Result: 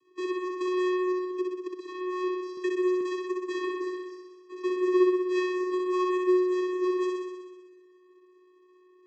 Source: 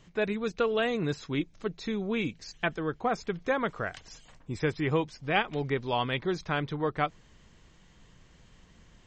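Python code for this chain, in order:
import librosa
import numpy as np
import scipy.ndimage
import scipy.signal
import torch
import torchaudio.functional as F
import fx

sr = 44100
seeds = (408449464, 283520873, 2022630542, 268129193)

y = fx.halfwave_hold(x, sr)
y = fx.highpass(y, sr, hz=200.0, slope=6)
y = fx.low_shelf(y, sr, hz=420.0, db=-4.5)
y = fx.level_steps(y, sr, step_db=13, at=(1.24, 1.8))
y = fx.vocoder(y, sr, bands=16, carrier='square', carrier_hz=365.0)
y = fx.room_flutter(y, sr, wall_m=10.8, rt60_s=1.3)
y = fx.band_squash(y, sr, depth_pct=40, at=(2.57, 3.01))
y = F.gain(torch.from_numpy(y), -4.5).numpy()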